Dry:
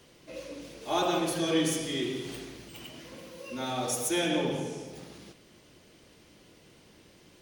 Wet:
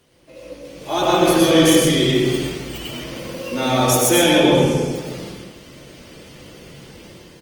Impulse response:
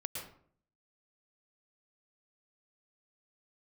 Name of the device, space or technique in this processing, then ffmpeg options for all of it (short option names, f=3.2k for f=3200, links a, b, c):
speakerphone in a meeting room: -filter_complex "[1:a]atrim=start_sample=2205[a];[0:a][a]afir=irnorm=-1:irlink=0,asplit=2[b][c];[c]adelay=290,highpass=300,lowpass=3.4k,asoftclip=type=hard:threshold=-25.5dB,volume=-20dB[d];[b][d]amix=inputs=2:normalize=0,dynaudnorm=f=710:g=3:m=13.5dB,volume=2.5dB" -ar 48000 -c:a libopus -b:a 24k